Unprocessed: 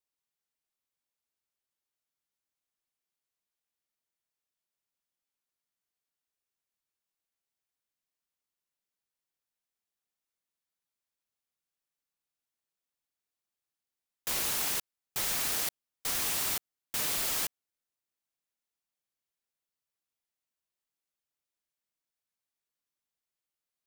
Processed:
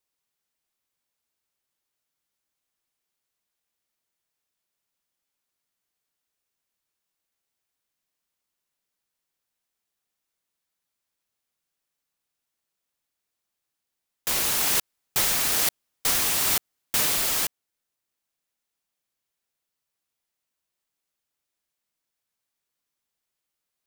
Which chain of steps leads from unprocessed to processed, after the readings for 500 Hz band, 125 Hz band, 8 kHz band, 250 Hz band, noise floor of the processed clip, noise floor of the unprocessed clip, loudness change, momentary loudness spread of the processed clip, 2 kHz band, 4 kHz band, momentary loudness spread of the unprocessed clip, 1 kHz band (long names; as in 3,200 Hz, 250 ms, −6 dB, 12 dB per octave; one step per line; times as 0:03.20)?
+8.0 dB, +8.0 dB, +8.0 dB, +8.0 dB, −84 dBFS, below −85 dBFS, +8.0 dB, 7 LU, +8.0 dB, +8.0 dB, 8 LU, +8.0 dB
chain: speech leveller 0.5 s
level +8.5 dB